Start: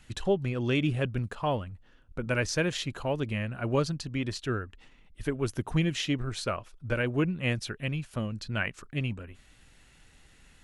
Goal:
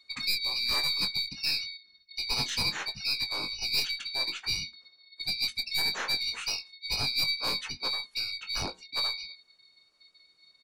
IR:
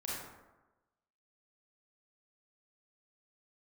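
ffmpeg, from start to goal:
-filter_complex "[0:a]afftfilt=real='real(if(lt(b,272),68*(eq(floor(b/68),0)*1+eq(floor(b/68),1)*2+eq(floor(b/68),2)*3+eq(floor(b/68),3)*0)+mod(b,68),b),0)':imag='imag(if(lt(b,272),68*(eq(floor(b/68),0)*1+eq(floor(b/68),1)*2+eq(floor(b/68),2)*3+eq(floor(b/68),3)*0)+mod(b,68),b),0)':win_size=2048:overlap=0.75,afftdn=nr=16:nf=-42,bandreject=f=500:w=12,aeval=exprs='0.211*(cos(1*acos(clip(val(0)/0.211,-1,1)))-cos(1*PI/2))+0.0531*(cos(2*acos(clip(val(0)/0.211,-1,1)))-cos(2*PI/2))+0.0531*(cos(5*acos(clip(val(0)/0.211,-1,1)))-cos(5*PI/2))+0.00473*(cos(6*acos(clip(val(0)/0.211,-1,1)))-cos(6*PI/2))':c=same,flanger=delay=6:depth=1.2:regen=-87:speed=0.38:shape=triangular,acrossover=split=260|440|3800[a][b][c][d];[a]volume=30dB,asoftclip=hard,volume=-30dB[e];[e][b][c][d]amix=inputs=4:normalize=0,asplit=3[f][g][h];[g]asetrate=22050,aresample=44100,atempo=2,volume=-6dB[i];[h]asetrate=37084,aresample=44100,atempo=1.18921,volume=-5dB[j];[f][i][j]amix=inputs=3:normalize=0,asplit=2[k][l];[l]adelay=21,volume=-9dB[m];[k][m]amix=inputs=2:normalize=0,volume=-4.5dB"

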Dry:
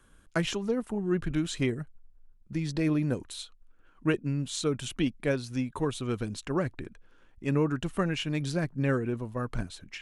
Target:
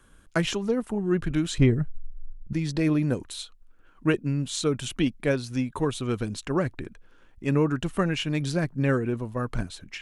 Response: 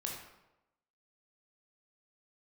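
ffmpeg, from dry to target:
-filter_complex "[0:a]asettb=1/sr,asplit=3[a][b][c];[a]atrim=end=1.584[d];[b]atrim=start=1.58:end=2.53,asetpts=PTS-STARTPTS,afade=t=in:d=0.004:c=qsin,afade=t=out:st=0.946:d=0.004:c=qsin,aemphasis=mode=reproduction:type=bsi[e];[c]atrim=start=2.526[f];[d][e]acrossfade=d=0.004:c1=hsin:c2=qsin[g];[g][f]acrossfade=d=0.004:c1=qsin:c2=hsin,volume=3.5dB"

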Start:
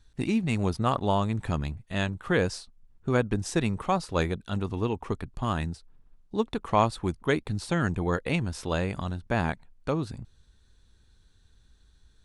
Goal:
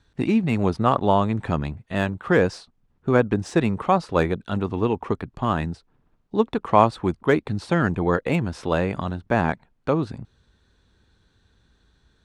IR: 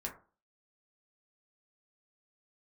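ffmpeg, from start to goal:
-filter_complex "[0:a]highpass=f=160:p=1,aemphasis=mode=reproduction:type=75fm,acrossover=split=630|1900[a][b][c];[c]asoftclip=type=tanh:threshold=-33.5dB[d];[a][b][d]amix=inputs=3:normalize=0,volume=7dB"

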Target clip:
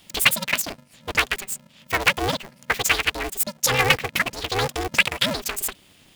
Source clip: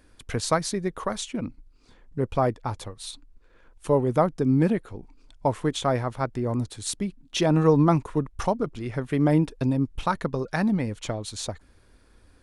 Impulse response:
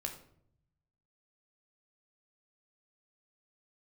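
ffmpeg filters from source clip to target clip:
-af "asetrate=89082,aresample=44100,highshelf=f=1.6k:t=q:w=1.5:g=12,aeval=exprs='val(0)*sgn(sin(2*PI*190*n/s))':c=same,volume=-2.5dB"

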